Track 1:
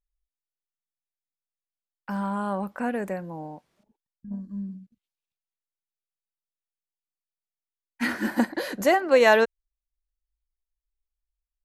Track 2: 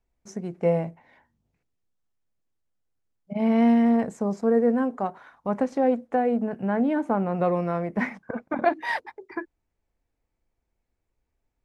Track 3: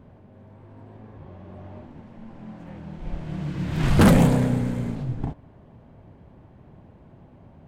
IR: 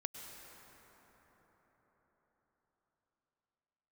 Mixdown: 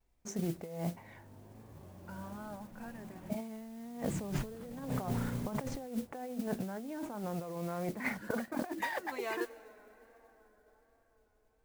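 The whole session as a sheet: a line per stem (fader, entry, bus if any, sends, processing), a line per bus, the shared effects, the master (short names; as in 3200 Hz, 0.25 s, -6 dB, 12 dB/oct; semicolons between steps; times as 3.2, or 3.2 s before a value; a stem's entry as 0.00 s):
-17.0 dB, 0.00 s, send -14.5 dB, cascading flanger rising 0.66 Hz; auto duck -8 dB, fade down 1.80 s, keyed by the second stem
-6.0 dB, 0.00 s, no send, dry
-17.5 dB, 0.55 s, no send, dry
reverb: on, RT60 5.2 s, pre-delay 93 ms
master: negative-ratio compressor -39 dBFS, ratio -1; vibrato 1.3 Hz 67 cents; modulation noise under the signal 18 dB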